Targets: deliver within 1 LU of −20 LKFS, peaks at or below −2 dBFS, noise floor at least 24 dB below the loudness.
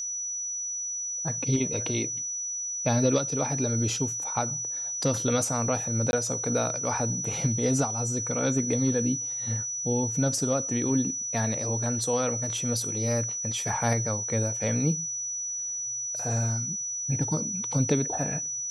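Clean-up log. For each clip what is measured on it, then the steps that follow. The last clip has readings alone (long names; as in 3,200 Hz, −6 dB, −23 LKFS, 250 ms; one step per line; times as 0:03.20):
number of dropouts 1; longest dropout 21 ms; interfering tone 5,900 Hz; level of the tone −30 dBFS; integrated loudness −27.0 LKFS; sample peak −10.5 dBFS; target loudness −20.0 LKFS
→ repair the gap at 0:06.11, 21 ms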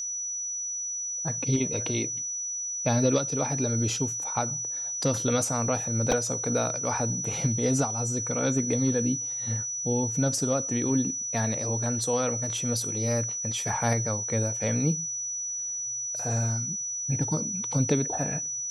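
number of dropouts 0; interfering tone 5,900 Hz; level of the tone −30 dBFS
→ notch filter 5,900 Hz, Q 30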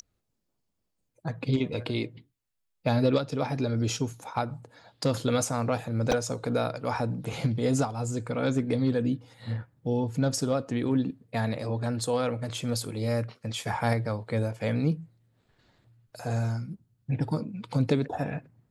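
interfering tone none found; integrated loudness −29.5 LKFS; sample peak −10.5 dBFS; target loudness −20.0 LKFS
→ level +9.5 dB
brickwall limiter −2 dBFS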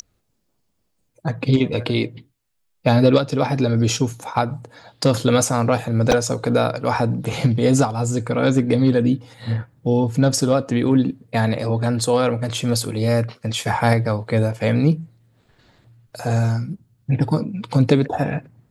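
integrated loudness −20.0 LKFS; sample peak −2.0 dBFS; background noise floor −69 dBFS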